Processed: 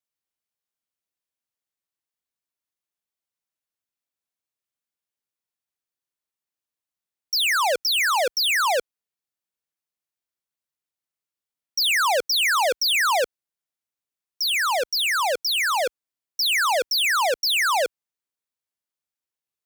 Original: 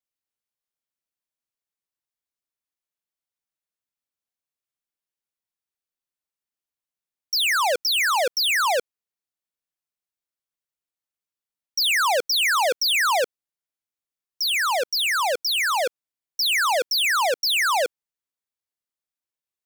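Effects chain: high-pass 42 Hz 12 dB/octave

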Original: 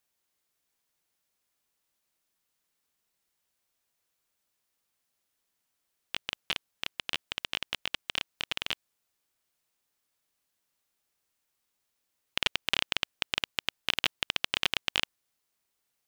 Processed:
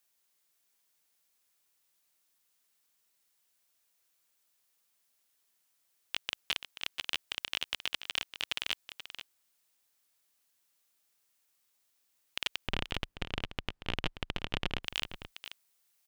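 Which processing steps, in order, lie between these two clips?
tilt EQ +1.5 dB/octave, from 12.66 s -4 dB/octave, from 14.83 s +2 dB/octave; peak limiter -13.5 dBFS, peak gain reduction 9 dB; delay 482 ms -11.5 dB

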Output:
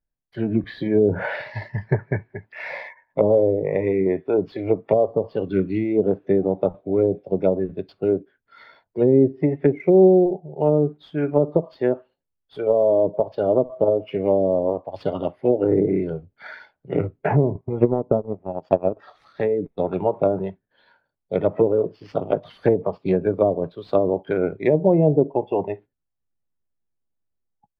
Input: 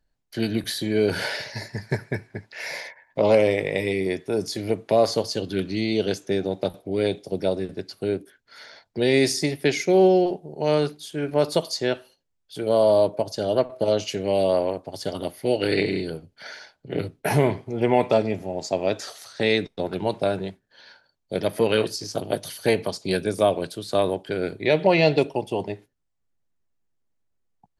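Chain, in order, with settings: low-pass that closes with the level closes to 490 Hz, closed at -17 dBFS; 17.55–18.97 s: transient shaper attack +10 dB, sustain -11 dB; spectral noise reduction 11 dB; level rider gain up to 6.5 dB; in parallel at -10 dB: sample-rate reducer 8 kHz, jitter 0%; on the sum: distance through air 460 m; trim -2 dB

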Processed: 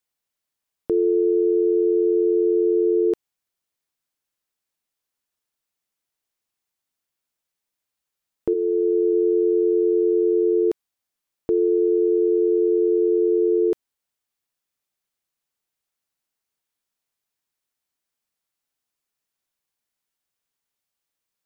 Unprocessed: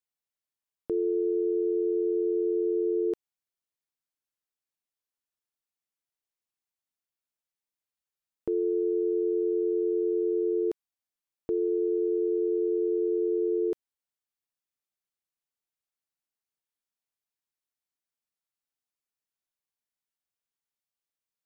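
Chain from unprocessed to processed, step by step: 8.53–9.12 s: high-pass 470 Hz -> 180 Hz 12 dB/octave; trim +8 dB

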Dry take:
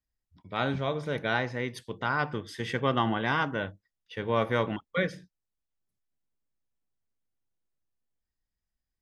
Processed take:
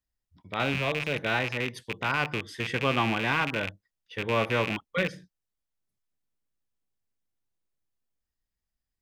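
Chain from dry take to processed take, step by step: rattle on loud lows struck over -38 dBFS, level -19 dBFS

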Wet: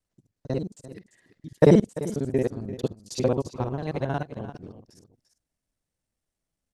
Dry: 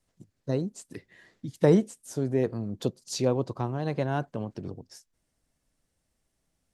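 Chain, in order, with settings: time reversed locally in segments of 45 ms; delay 343 ms -10.5 dB; upward expansion 1.5:1, over -44 dBFS; trim +5.5 dB

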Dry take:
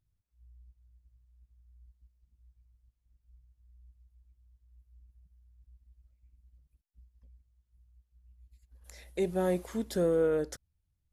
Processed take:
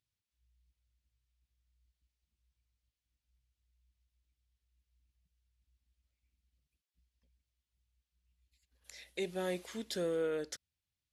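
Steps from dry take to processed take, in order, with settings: frequency weighting D; trim -7 dB

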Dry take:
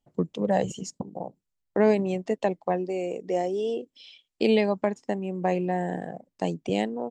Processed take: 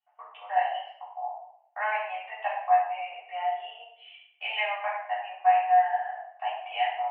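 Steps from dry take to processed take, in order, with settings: Chebyshev band-pass 700–3000 Hz, order 5; simulated room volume 190 m³, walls mixed, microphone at 3.4 m; trim -5.5 dB

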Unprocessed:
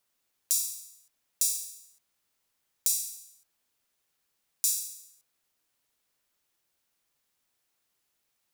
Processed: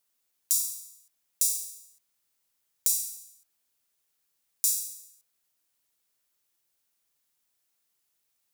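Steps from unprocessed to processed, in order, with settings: treble shelf 5 kHz +7.5 dB; trim -4.5 dB

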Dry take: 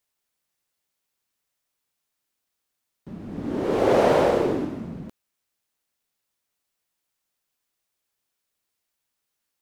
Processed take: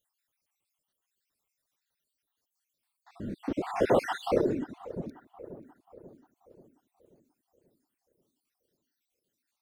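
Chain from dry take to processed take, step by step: random holes in the spectrogram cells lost 62%; in parallel at -2 dB: compression, threshold -34 dBFS, peak gain reduction 17.5 dB; on the sum: filtered feedback delay 535 ms, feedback 51%, low-pass 1.7 kHz, level -13.5 dB; reverb removal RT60 1.4 s; trim -3.5 dB

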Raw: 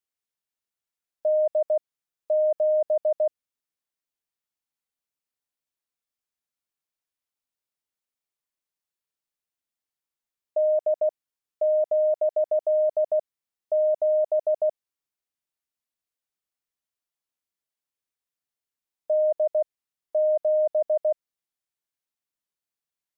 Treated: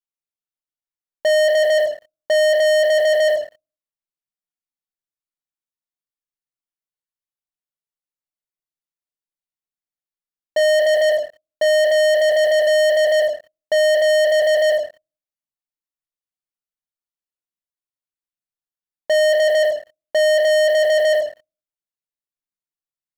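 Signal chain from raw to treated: reverberation RT60 0.40 s, pre-delay 3 ms, DRR -3.5 dB; waveshaping leveller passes 5; trim -4 dB

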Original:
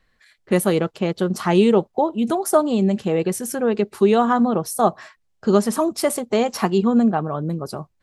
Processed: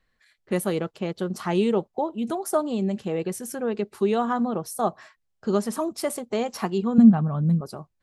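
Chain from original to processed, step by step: 6.98–7.61 s: resonant low shelf 270 Hz +8 dB, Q 3; trim -7 dB

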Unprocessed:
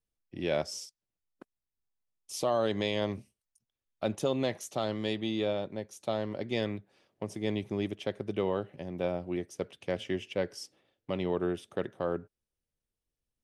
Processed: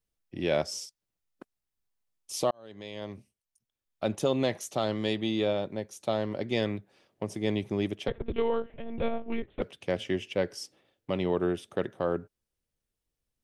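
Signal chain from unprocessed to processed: 2.51–4.30 s: fade in; 8.08–9.62 s: monotone LPC vocoder at 8 kHz 230 Hz; trim +3 dB

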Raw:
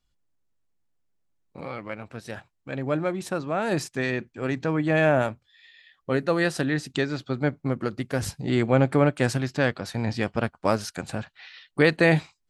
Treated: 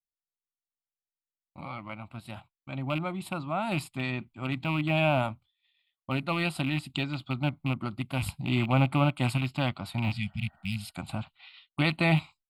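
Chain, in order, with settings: rattle on loud lows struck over -28 dBFS, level -22 dBFS; expander -42 dBFS; spectral replace 10.16–10.89 s, 230–1900 Hz after; static phaser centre 1.7 kHz, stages 6

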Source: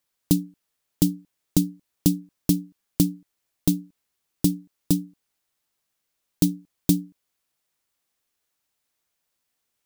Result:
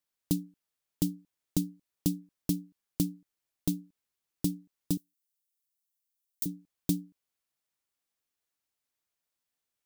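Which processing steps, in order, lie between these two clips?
4.97–6.46 s: differentiator; trim -9 dB

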